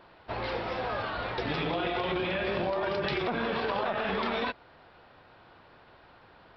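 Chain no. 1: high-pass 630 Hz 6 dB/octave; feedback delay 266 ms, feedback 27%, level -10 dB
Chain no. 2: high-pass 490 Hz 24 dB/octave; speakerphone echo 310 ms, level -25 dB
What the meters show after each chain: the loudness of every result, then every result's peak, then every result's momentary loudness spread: -33.0 LUFS, -32.5 LUFS; -18.5 dBFS, -19.0 dBFS; 7 LU, 4 LU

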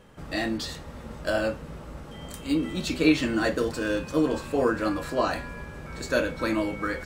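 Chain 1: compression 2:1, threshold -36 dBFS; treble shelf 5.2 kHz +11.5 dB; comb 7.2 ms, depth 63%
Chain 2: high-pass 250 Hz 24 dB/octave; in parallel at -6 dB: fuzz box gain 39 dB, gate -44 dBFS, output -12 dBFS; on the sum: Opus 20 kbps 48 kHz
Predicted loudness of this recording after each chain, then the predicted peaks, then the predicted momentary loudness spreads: -33.0 LUFS, -19.0 LUFS; -12.0 dBFS, -6.0 dBFS; 8 LU, 11 LU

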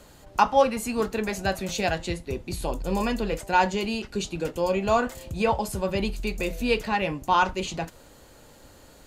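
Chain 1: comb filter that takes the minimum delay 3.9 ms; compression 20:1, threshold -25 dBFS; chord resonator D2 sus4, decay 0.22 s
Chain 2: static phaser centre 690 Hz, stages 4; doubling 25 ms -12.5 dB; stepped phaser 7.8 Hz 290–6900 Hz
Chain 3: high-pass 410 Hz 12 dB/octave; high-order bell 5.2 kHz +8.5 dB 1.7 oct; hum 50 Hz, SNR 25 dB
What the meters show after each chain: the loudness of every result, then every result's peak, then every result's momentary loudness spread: -41.0 LUFS, -31.5 LUFS, -26.0 LUFS; -21.5 dBFS, -11.5 dBFS, -5.0 dBFS; 5 LU, 12 LU, 9 LU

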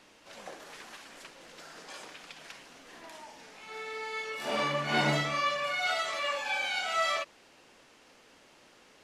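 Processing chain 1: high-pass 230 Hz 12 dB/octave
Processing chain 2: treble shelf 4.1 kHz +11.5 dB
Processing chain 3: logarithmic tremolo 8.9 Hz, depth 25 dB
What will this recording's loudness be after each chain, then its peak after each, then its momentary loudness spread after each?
-30.5 LUFS, -28.5 LUFS, -36.5 LUFS; -14.5 dBFS, -12.5 dBFS, -18.0 dBFS; 20 LU, 19 LU, 20 LU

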